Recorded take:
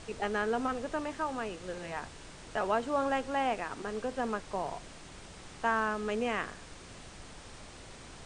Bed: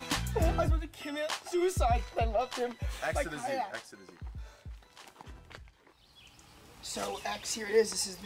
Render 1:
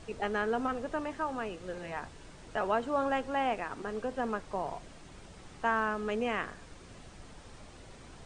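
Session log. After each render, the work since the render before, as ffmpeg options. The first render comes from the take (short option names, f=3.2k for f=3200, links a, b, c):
-af "afftdn=nr=6:nf=-50"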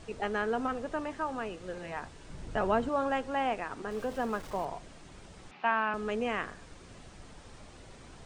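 -filter_complex "[0:a]asettb=1/sr,asplit=3[a][b][c];[a]atrim=end=2.304[d];[b]atrim=start=2.3:end=2.89,asetpts=PTS-STARTPTS,afade=t=in:d=0.004:c=qsin,afade=t=out:st=0.586:d=0.004:c=qsin,lowshelf=f=260:g=11.5[e];[c]atrim=start=2.886[f];[d][e]acrossfade=d=0.004:c1=hsin:c2=qsin[g];[g][f]acrossfade=d=0.004:c1=qsin:c2=hsin,asettb=1/sr,asplit=3[h][i][j];[h]atrim=end=3.914[k];[i]atrim=start=3.91:end=4.65,asetpts=PTS-STARTPTS,afade=t=in:d=0.004:c=qsin,afade=t=out:st=0.736:d=0.004:c=qsin,aeval=exprs='val(0)+0.5*0.00562*sgn(val(0))':c=same[l];[j]atrim=start=4.646[m];[k][l]acrossfade=d=0.004:c1=hsin:c2=qsin[n];[n][m]acrossfade=d=0.004:c1=qsin:c2=hsin,asettb=1/sr,asplit=3[o][p][q];[o]atrim=end=5.514[r];[p]atrim=start=5.51:end=5.94,asetpts=PTS-STARTPTS,afade=t=in:d=0.004:c=qsin,afade=t=out:st=0.426:d=0.004:c=qsin,highpass=f=190:w=0.5412,highpass=f=190:w=1.3066,equalizer=f=310:t=q:w=4:g=-9,equalizer=f=480:t=q:w=4:g=-8,equalizer=f=790:t=q:w=4:g=5,equalizer=f=2.5k:t=q:w=4:g=10,lowpass=f=4.3k:w=0.5412,lowpass=f=4.3k:w=1.3066[s];[q]atrim=start=5.936[t];[r][s]acrossfade=d=0.004:c1=hsin:c2=qsin[u];[u][t]acrossfade=d=0.004:c1=qsin:c2=hsin"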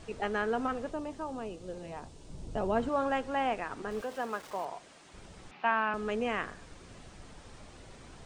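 -filter_complex "[0:a]asplit=3[a][b][c];[a]afade=t=out:st=0.9:d=0.02[d];[b]equalizer=f=1.7k:t=o:w=1.4:g=-12.5,afade=t=in:st=0.9:d=0.02,afade=t=out:st=2.75:d=0.02[e];[c]afade=t=in:st=2.75:d=0.02[f];[d][e][f]amix=inputs=3:normalize=0,asettb=1/sr,asplit=3[g][h][i];[g]atrim=end=4.014[j];[h]atrim=start=4.01:end=5.14,asetpts=PTS-STARTPTS,afade=t=in:d=0.004:c=qsin,afade=t=out:st=1.126:d=0.004:c=qsin,highpass=f=510:p=1[k];[i]atrim=start=5.136[l];[j][k]acrossfade=d=0.004:c1=hsin:c2=qsin[m];[m][l]acrossfade=d=0.004:c1=qsin:c2=hsin"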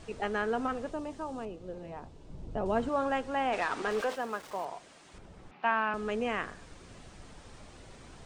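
-filter_complex "[0:a]asettb=1/sr,asplit=3[a][b][c];[a]atrim=end=1.454[d];[b]atrim=start=1.45:end=2.66,asetpts=PTS-STARTPTS,afade=t=in:d=0.004:c=qsin,afade=t=out:st=1.206:d=0.004:c=qsin,lowpass=f=1.9k:p=1[e];[c]atrim=start=2.656[f];[d][e]acrossfade=d=0.004:c1=hsin:c2=qsin[g];[g][f]acrossfade=d=0.004:c1=qsin:c2=hsin,asplit=3[h][i][j];[h]afade=t=out:st=3.52:d=0.02[k];[i]asplit=2[l][m];[m]highpass=f=720:p=1,volume=17dB,asoftclip=type=tanh:threshold=-19dB[n];[l][n]amix=inputs=2:normalize=0,lowpass=f=5k:p=1,volume=-6dB,afade=t=in:st=3.52:d=0.02,afade=t=out:st=4.14:d=0.02[o];[j]afade=t=in:st=4.14:d=0.02[p];[k][o][p]amix=inputs=3:normalize=0,asettb=1/sr,asplit=3[q][r][s];[q]atrim=end=5.184[t];[r]atrim=start=5.18:end=5.63,asetpts=PTS-STARTPTS,afade=t=in:d=0.004:c=qsin,afade=t=out:st=0.446:d=0.004:c=qsin,highshelf=f=2.2k:g=-11[u];[s]atrim=start=5.626[v];[t][u]acrossfade=d=0.004:c1=hsin:c2=qsin[w];[w][v]acrossfade=d=0.004:c1=qsin:c2=hsin"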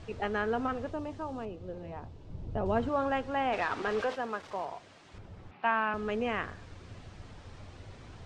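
-af "lowpass=5.3k,equalizer=f=95:t=o:w=0.52:g=12.5"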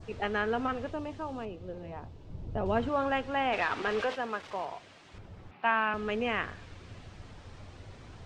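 -af "adynamicequalizer=threshold=0.00316:dfrequency=2700:dqfactor=1:tfrequency=2700:tqfactor=1:attack=5:release=100:ratio=0.375:range=2.5:mode=boostabove:tftype=bell"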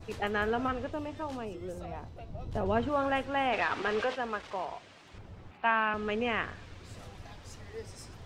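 -filter_complex "[1:a]volume=-18dB[a];[0:a][a]amix=inputs=2:normalize=0"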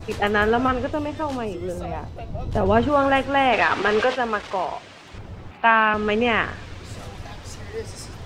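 -af "volume=11dB"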